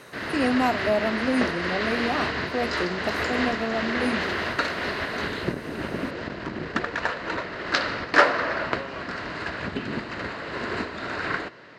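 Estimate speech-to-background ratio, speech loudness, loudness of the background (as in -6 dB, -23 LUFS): -0.5 dB, -28.0 LUFS, -27.5 LUFS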